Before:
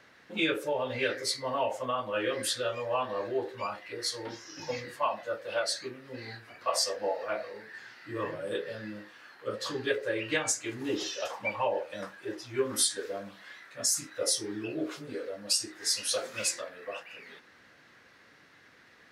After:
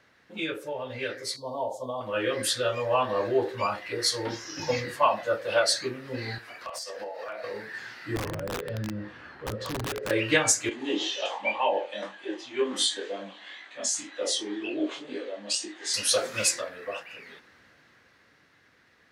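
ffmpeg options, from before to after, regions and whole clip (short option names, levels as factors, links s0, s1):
-filter_complex "[0:a]asettb=1/sr,asplit=3[s0][s1][s2];[s0]atrim=end=1.364[s3];[s1]atrim=start=1.36:end=2.01,asetpts=PTS-STARTPTS,afade=t=in:d=0.004:c=qsin,afade=t=out:st=0.646:d=0.004:c=qsin,asuperstop=centerf=1900:order=12:qfactor=0.78,lowshelf=f=77:g=-9.5[s4];[s2]atrim=start=2.006[s5];[s3][s4]acrossfade=d=0.004:c1=hsin:c2=qsin[s6];[s6][s5]acrossfade=d=0.004:c1=qsin:c2=hsin,asettb=1/sr,asplit=3[s7][s8][s9];[s7]atrim=end=6.384[s10];[s8]atrim=start=6.38:end=7.44,asetpts=PTS-STARTPTS,afade=t=in:d=0.004:c=qsin,afade=t=out:st=1.056:d=0.004:c=qsin,highpass=f=550:p=1,acompressor=threshold=0.01:ratio=16:attack=3.2:release=140:knee=1:detection=peak,aeval=exprs='0.0158*(abs(mod(val(0)/0.0158+3,4)-2)-1)':c=same[s11];[s9]atrim=start=7.436[s12];[s10][s11]acrossfade=d=0.004:c1=hsin:c2=qsin[s13];[s13][s12]acrossfade=d=0.004:c1=qsin:c2=hsin,asettb=1/sr,asplit=3[s14][s15][s16];[s14]atrim=end=8.164[s17];[s15]atrim=start=8.16:end=10.11,asetpts=PTS-STARTPTS,afade=t=in:d=0.004:c=qsin,afade=t=out:st=1.946:d=0.004:c=qsin,aemphasis=mode=reproduction:type=riaa,acompressor=threshold=0.01:ratio=3:attack=3.2:release=140:knee=1:detection=peak,aeval=exprs='(mod(47.3*val(0)+1,2)-1)/47.3':c=same[s18];[s16]atrim=start=10.106[s19];[s17][s18]acrossfade=d=0.004:c1=hsin:c2=qsin[s20];[s20][s19]acrossfade=d=0.004:c1=qsin:c2=hsin,asettb=1/sr,asplit=3[s21][s22][s23];[s21]atrim=end=10.694[s24];[s22]atrim=start=10.69:end=15.94,asetpts=PTS-STARTPTS,afade=t=in:d=0.004:c=qsin,afade=t=out:st=5.246:d=0.004:c=qsin,flanger=delay=19.5:depth=4.7:speed=2,highpass=f=240:w=0.5412,highpass=f=240:w=1.3066,equalizer=f=450:t=q:w=4:g=-5,equalizer=f=810:t=q:w=4:g=4,equalizer=f=1400:t=q:w=4:g=-7,equalizer=f=3200:t=q:w=4:g=8,equalizer=f=5300:t=q:w=4:g=-9,lowpass=f=7400:w=0.5412,lowpass=f=7400:w=1.3066[s25];[s23]atrim=start=15.936[s26];[s24][s25]acrossfade=d=0.004:c1=hsin:c2=qsin[s27];[s27][s26]acrossfade=d=0.004:c1=qsin:c2=hsin,equalizer=f=67:w=0.78:g=5.5,dynaudnorm=f=220:g=21:m=3.76,volume=0.631"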